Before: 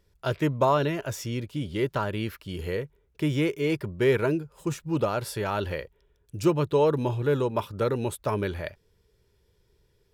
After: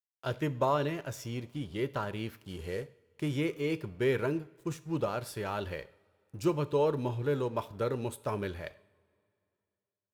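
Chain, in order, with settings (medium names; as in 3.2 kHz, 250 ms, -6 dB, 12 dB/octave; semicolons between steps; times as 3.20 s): 2.36–3.38 s: CVSD coder 64 kbps; crossover distortion -49.5 dBFS; on a send: reverberation, pre-delay 3 ms, DRR 13.5 dB; on the sum: trim -6 dB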